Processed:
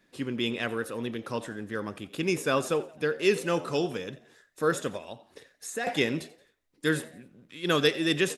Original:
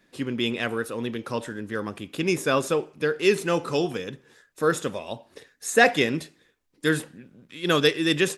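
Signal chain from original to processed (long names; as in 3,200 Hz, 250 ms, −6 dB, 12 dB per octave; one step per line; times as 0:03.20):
0:04.97–0:05.87: downward compressor 2 to 1, threshold −37 dBFS, peak gain reduction 14 dB
on a send: echo with shifted repeats 87 ms, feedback 41%, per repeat +85 Hz, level −19.5 dB
on the sum: level −3.5 dB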